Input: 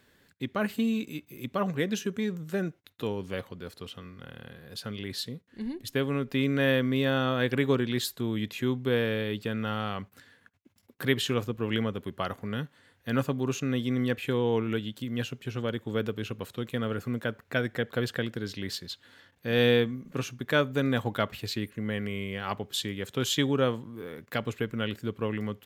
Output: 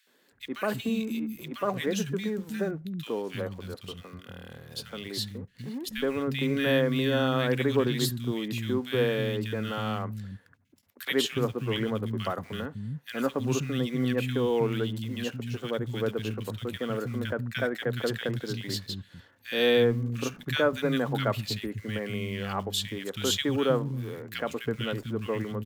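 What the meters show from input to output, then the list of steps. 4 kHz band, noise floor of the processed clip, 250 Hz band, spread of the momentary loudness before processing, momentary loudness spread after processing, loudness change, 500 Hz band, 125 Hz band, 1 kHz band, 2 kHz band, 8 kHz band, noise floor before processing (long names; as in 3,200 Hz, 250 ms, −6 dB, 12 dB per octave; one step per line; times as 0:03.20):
+1.5 dB, −60 dBFS, −0.5 dB, 12 LU, 12 LU, +0.5 dB, +1.5 dB, +1.0 dB, +0.5 dB, −0.5 dB, +2.0 dB, −65 dBFS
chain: in parallel at −12 dB: bit reduction 7 bits
on the sum: three-band delay without the direct sound highs, mids, lows 70/320 ms, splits 210/1,700 Hz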